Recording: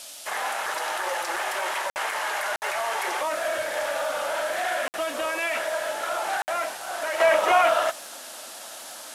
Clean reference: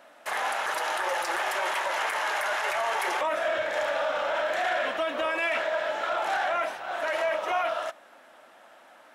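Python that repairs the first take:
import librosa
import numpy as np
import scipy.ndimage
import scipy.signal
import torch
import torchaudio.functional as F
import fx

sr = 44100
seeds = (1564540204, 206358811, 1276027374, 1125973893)

y = fx.fix_declick_ar(x, sr, threshold=6.5)
y = fx.fix_interpolate(y, sr, at_s=(1.9, 2.56, 4.88, 6.42), length_ms=59.0)
y = fx.noise_reduce(y, sr, print_start_s=8.07, print_end_s=8.57, reduce_db=13.0)
y = fx.gain(y, sr, db=fx.steps((0.0, 0.0), (7.2, -8.5)))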